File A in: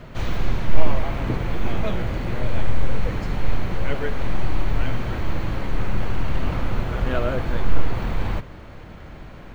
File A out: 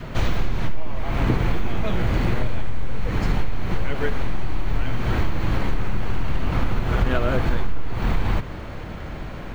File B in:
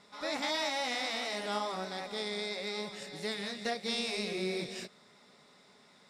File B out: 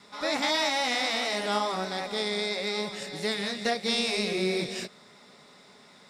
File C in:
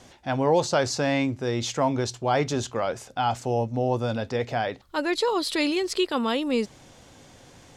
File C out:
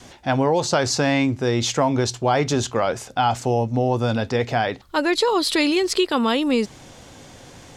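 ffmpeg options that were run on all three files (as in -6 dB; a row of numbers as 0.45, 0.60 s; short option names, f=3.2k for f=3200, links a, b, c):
-af "adynamicequalizer=threshold=0.00794:dfrequency=560:dqfactor=3.6:tfrequency=560:tqfactor=3.6:attack=5:release=100:ratio=0.375:range=2:mode=cutabove:tftype=bell,acompressor=threshold=-21dB:ratio=16,volume=7dB"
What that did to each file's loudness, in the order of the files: +1.0, +7.0, +5.0 LU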